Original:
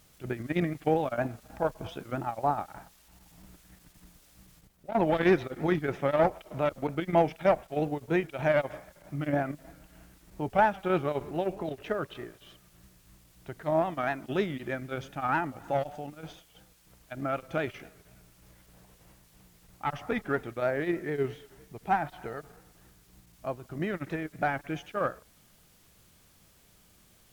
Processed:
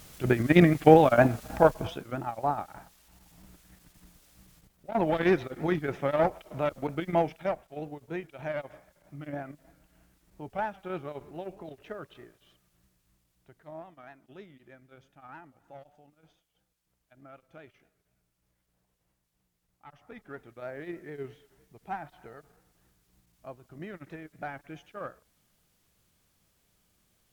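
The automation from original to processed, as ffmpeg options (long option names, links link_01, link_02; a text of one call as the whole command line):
ffmpeg -i in.wav -af "volume=20dB,afade=type=out:start_time=1.56:duration=0.48:silence=0.281838,afade=type=out:start_time=7.08:duration=0.51:silence=0.398107,afade=type=out:start_time=12.2:duration=1.77:silence=0.298538,afade=type=in:start_time=19.95:duration=0.94:silence=0.316228" out.wav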